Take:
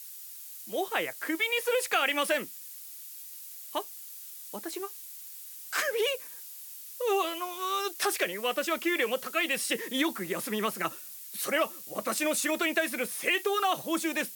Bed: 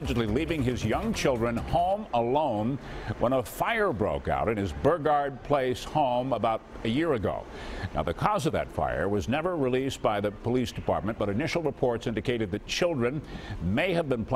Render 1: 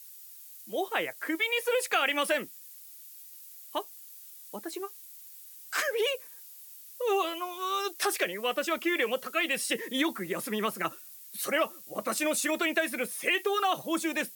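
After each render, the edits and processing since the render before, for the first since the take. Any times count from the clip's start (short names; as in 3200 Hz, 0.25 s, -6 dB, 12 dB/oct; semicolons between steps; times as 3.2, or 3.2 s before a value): denoiser 6 dB, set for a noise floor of -45 dBFS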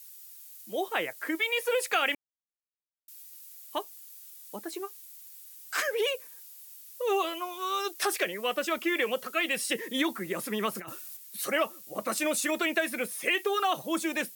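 2.15–3.08 mute; 10.75–11.17 negative-ratio compressor -39 dBFS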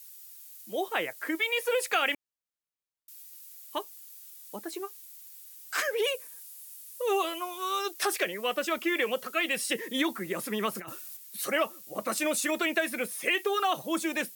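3.36–4.01 notch 720 Hz, Q 6.3; 6.04–7.79 bell 10000 Hz +5.5 dB 0.71 oct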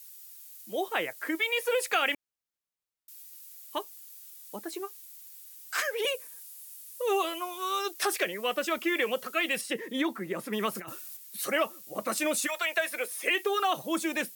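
5.65–6.05 Bessel high-pass 490 Hz; 9.61–10.53 high shelf 2900 Hz -8.5 dB; 12.46–13.29 HPF 740 Hz -> 260 Hz 24 dB/oct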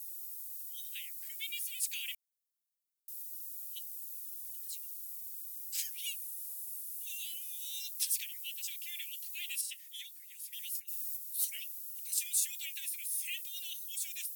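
inverse Chebyshev high-pass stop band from 1300 Hz, stop band 40 dB; differentiator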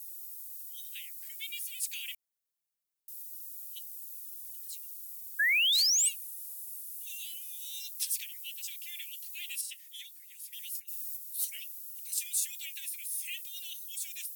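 5.39–6.09 painted sound rise 1600–8700 Hz -26 dBFS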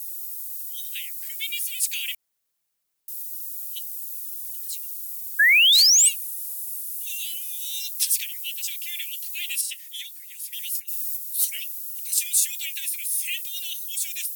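gain +10.5 dB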